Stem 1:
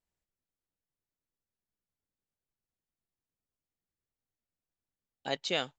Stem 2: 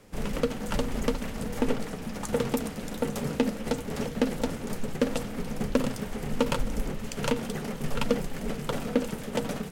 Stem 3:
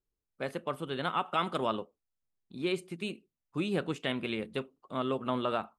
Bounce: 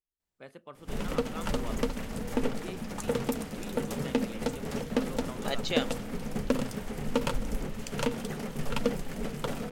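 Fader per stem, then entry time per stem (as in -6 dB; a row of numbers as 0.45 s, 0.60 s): 0.0 dB, -2.5 dB, -12.5 dB; 0.20 s, 0.75 s, 0.00 s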